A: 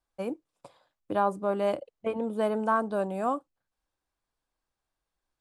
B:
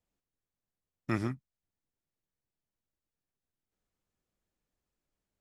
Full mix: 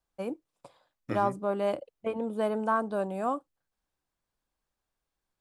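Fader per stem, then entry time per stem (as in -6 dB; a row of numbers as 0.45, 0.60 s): -1.5, -5.5 dB; 0.00, 0.00 s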